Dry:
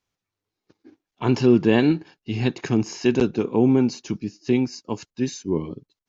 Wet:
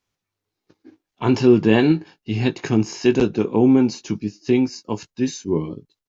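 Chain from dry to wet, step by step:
double-tracking delay 19 ms −9.5 dB
level +2 dB

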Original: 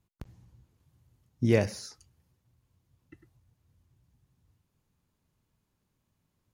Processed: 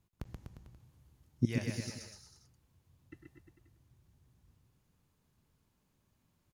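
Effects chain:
0:01.45–0:01.88: guitar amp tone stack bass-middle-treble 5-5-5
bouncing-ball delay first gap 130 ms, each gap 0.9×, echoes 5

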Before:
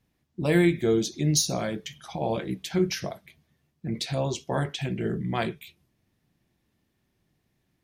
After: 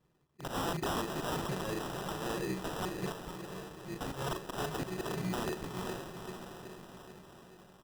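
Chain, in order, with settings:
EQ curve with evenly spaced ripples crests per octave 0.74, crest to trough 14 dB
treble cut that deepens with the level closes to 770 Hz, closed at −16.5 dBFS
wrap-around overflow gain 18.5 dB
floating-point word with a short mantissa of 2 bits
low-shelf EQ 110 Hz −12 dB
volume swells 298 ms
double-tracking delay 38 ms −11 dB
feedback delay with all-pass diffusion 469 ms, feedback 59%, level −10.5 dB
sample-rate reduction 2,200 Hz, jitter 0%
brickwall limiter −28 dBFS, peak gain reduction 12 dB

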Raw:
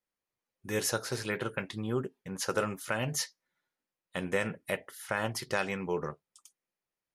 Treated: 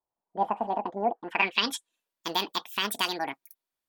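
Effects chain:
low-pass filter sweep 460 Hz → 8,500 Hz, 0:02.00–0:03.80
dynamic equaliser 1,700 Hz, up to +5 dB, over −42 dBFS, Q 1
change of speed 1.84×
level +1 dB

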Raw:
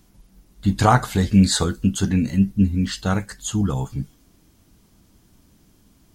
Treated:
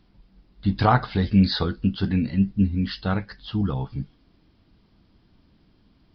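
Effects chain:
downsampling to 11,025 Hz
level −3 dB

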